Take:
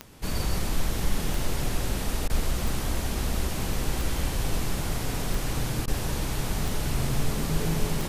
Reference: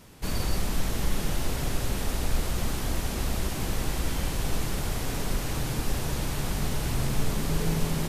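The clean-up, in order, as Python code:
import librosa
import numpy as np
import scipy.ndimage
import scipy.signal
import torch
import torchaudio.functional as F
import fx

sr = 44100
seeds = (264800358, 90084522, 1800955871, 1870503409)

y = fx.fix_declick_ar(x, sr, threshold=10.0)
y = fx.fix_interpolate(y, sr, at_s=(2.28, 5.86), length_ms=16.0)
y = fx.fix_echo_inverse(y, sr, delay_ms=127, level_db=-8.0)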